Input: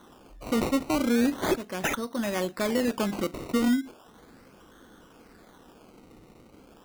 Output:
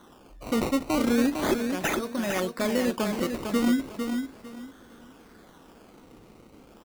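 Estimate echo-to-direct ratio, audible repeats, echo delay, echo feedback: -5.5 dB, 3, 452 ms, 25%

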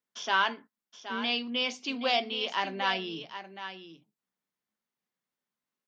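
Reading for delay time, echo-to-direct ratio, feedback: 772 ms, -11.0 dB, no regular repeats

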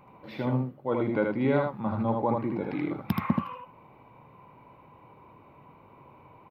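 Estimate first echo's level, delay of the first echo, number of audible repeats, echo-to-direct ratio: -3.0 dB, 78 ms, 1, -3.0 dB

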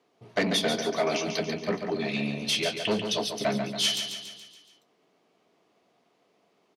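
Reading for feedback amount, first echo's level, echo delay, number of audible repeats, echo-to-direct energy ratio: 53%, -7.0 dB, 141 ms, 6, -5.5 dB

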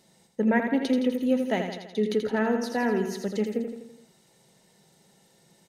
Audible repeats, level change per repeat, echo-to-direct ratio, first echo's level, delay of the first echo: 5, -5.0 dB, -5.0 dB, -6.5 dB, 83 ms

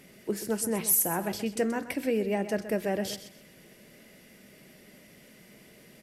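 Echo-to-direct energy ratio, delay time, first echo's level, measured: -12.0 dB, 128 ms, -12.5 dB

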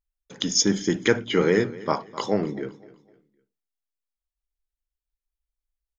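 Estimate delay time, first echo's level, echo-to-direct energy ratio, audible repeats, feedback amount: 254 ms, -19.0 dB, -18.5 dB, 2, 34%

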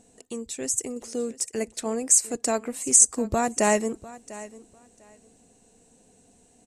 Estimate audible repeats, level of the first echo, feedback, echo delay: 2, -18.0 dB, 18%, 698 ms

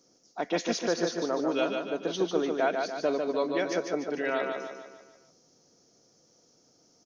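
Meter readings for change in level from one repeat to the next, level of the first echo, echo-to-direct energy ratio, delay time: -6.0 dB, -4.5 dB, -3.5 dB, 148 ms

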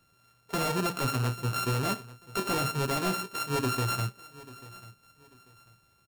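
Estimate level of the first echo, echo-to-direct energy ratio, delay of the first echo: -19.5 dB, -19.0 dB, 841 ms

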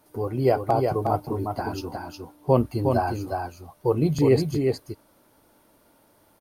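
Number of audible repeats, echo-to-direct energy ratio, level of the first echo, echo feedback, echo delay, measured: 1, -4.5 dB, -4.5 dB, no regular repeats, 361 ms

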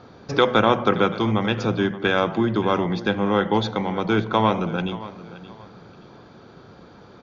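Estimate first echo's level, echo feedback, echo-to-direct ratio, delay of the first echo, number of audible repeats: -16.5 dB, 29%, -16.0 dB, 574 ms, 2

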